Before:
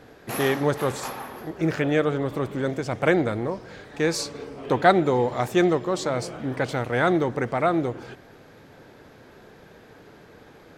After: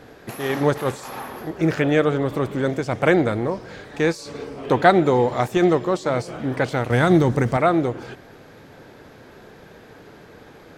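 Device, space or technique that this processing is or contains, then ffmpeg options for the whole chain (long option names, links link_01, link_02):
de-esser from a sidechain: -filter_complex "[0:a]asettb=1/sr,asplit=3[link_01][link_02][link_03];[link_01]atrim=end=6.904[link_04];[link_02]atrim=start=6.9:end=7.57,asetpts=PTS-STARTPTS,afade=type=in:duration=0.004:curve=qsin,afade=type=out:start_time=0.666:duration=0.004:curve=qsin,bass=frequency=250:gain=9,treble=frequency=4000:gain=9[link_05];[link_03]atrim=start=7.566[link_06];[link_04][link_05]acrossfade=duration=0.004:curve1=hsin:curve2=qsin[link_07];[link_07][link_06]acrossfade=duration=0.004:curve1=qsin:curve2=hsin,asplit=2[link_08][link_09];[link_09]highpass=frequency=6200:width=0.5412,highpass=frequency=6200:width=1.3066,apad=whole_len=475063[link_10];[link_08][link_10]sidechaincompress=threshold=-47dB:ratio=4:attack=3.8:release=43,volume=4dB"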